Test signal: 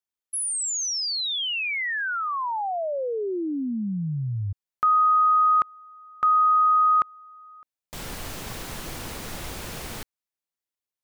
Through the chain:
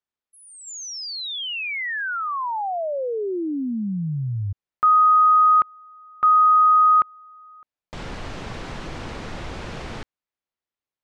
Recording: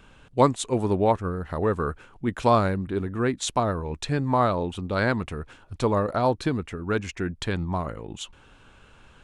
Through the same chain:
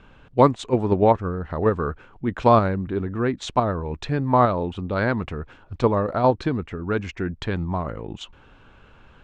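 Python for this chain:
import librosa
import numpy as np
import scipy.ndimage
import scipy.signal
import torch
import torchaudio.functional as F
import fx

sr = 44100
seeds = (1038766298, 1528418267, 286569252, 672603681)

p1 = scipy.signal.sosfilt(scipy.signal.bessel(4, 5300.0, 'lowpass', norm='mag', fs=sr, output='sos'), x)
p2 = fx.high_shelf(p1, sr, hz=3900.0, db=-9.0)
p3 = fx.level_steps(p2, sr, step_db=21)
p4 = p2 + (p3 * 10.0 ** (-3.0 / 20.0))
y = p4 * 10.0 ** (1.0 / 20.0)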